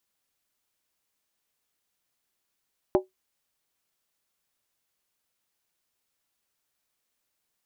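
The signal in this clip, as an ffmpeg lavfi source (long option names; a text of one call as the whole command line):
ffmpeg -f lavfi -i "aevalsrc='0.2*pow(10,-3*t/0.15)*sin(2*PI*374*t)+0.112*pow(10,-3*t/0.119)*sin(2*PI*596.2*t)+0.0631*pow(10,-3*t/0.103)*sin(2*PI*798.9*t)+0.0355*pow(10,-3*t/0.099)*sin(2*PI*858.7*t)+0.02*pow(10,-3*t/0.092)*sin(2*PI*992.2*t)':duration=0.63:sample_rate=44100" out.wav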